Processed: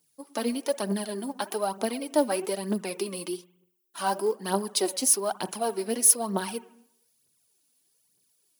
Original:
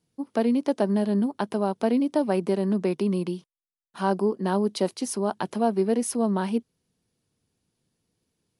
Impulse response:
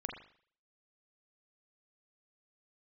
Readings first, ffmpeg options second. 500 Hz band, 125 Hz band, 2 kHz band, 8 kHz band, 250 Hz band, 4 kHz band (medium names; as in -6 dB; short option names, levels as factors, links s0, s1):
-3.5 dB, -9.0 dB, 0.0 dB, +13.0 dB, -8.0 dB, +5.5 dB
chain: -filter_complex "[0:a]asplit=2[s0][s1];[1:a]atrim=start_sample=2205,asetrate=33075,aresample=44100[s2];[s1][s2]afir=irnorm=-1:irlink=0,volume=0.237[s3];[s0][s3]amix=inputs=2:normalize=0,aphaser=in_gain=1:out_gain=1:delay=4.1:decay=0.61:speed=1.1:type=triangular,aemphasis=mode=production:type=riaa,volume=0.562"